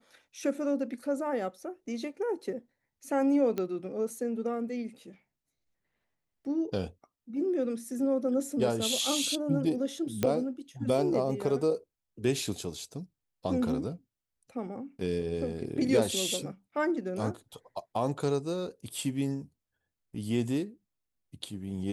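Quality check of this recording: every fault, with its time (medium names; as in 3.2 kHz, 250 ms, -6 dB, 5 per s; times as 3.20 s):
3.58 s: pop -19 dBFS
10.23 s: pop -13 dBFS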